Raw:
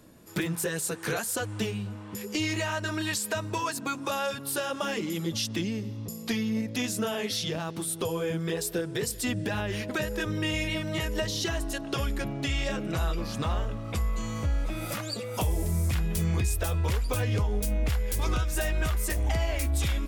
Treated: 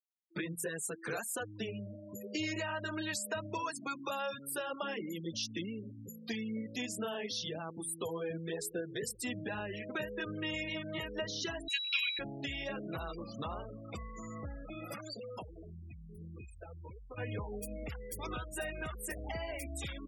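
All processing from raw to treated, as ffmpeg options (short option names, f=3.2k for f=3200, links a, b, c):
-filter_complex "[0:a]asettb=1/sr,asplit=3[a][b][c];[a]atrim=end=1.684[d];[b]atrim=start=1.68:end=3.62,asetpts=PTS-STARTPTS,afade=t=in:d=0.004:c=qsin,afade=t=out:st=1.936:d=0.004:c=qsin,lowshelf=f=270:g=3.5,aeval=exprs='val(0)+0.00631*sin(2*PI*600*n/s)':c=same[e];[c]atrim=start=3.616[f];[d][e]acrossfade=d=0.004:c1=hsin:c2=qsin[g];[g][f]acrossfade=d=0.004:c1=qsin:c2=hsin,asettb=1/sr,asplit=3[h][i][j];[h]atrim=end=11.684[k];[i]atrim=start=11.68:end=12.19,asetpts=PTS-STARTPTS,afade=t=in:d=0.004:c=qsin,afade=t=out:st=0.506:d=0.004:c=qsin,aeval=exprs='val(0)+0.0224*sin(2*PI*3900*n/s)':c=same,highpass=f=2.4k:t=q:w=13[l];[j]atrim=start=12.186[m];[k][l]acrossfade=d=0.004:c1=hsin:c2=qsin[n];[n][m]acrossfade=d=0.004:c1=qsin:c2=hsin,asettb=1/sr,asplit=3[o][p][q];[o]atrim=end=14.954[r];[p]atrim=start=14.95:end=17.18,asetpts=PTS-STARTPTS,afade=t=in:d=0.004:c=qsin,afade=t=out:st=2.226:d=0.004:c=qsin,asubboost=boost=2:cutoff=86,acompressor=threshold=-31dB:ratio=6:attack=3.2:release=140:knee=1:detection=peak[s];[q]atrim=start=17.176[t];[r][s]acrossfade=d=0.004:c1=hsin:c2=qsin[u];[u][t]acrossfade=d=0.004:c1=qsin:c2=hsin,afftfilt=real='re*gte(hypot(re,im),0.0251)':imag='im*gte(hypot(re,im),0.0251)':win_size=1024:overlap=0.75,highpass=f=230:p=1,volume=-6.5dB"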